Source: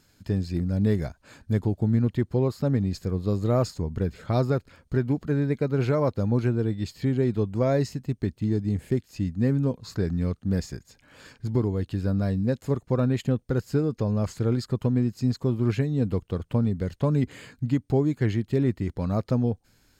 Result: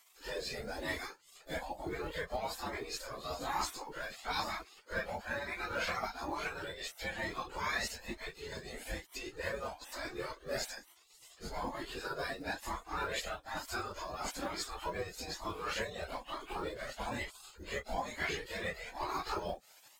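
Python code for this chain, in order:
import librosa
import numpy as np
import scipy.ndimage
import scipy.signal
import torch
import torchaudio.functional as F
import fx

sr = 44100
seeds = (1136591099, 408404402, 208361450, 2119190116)

p1 = fx.phase_scramble(x, sr, seeds[0], window_ms=100)
p2 = fx.rider(p1, sr, range_db=10, speed_s=2.0)
p3 = p1 + (p2 * 10.0 ** (2.0 / 20.0))
p4 = fx.spec_gate(p3, sr, threshold_db=-20, keep='weak')
p5 = fx.quant_float(p4, sr, bits=4)
p6 = fx.comb_cascade(p5, sr, direction='rising', hz=1.1)
y = p6 * 10.0 ** (2.0 / 20.0)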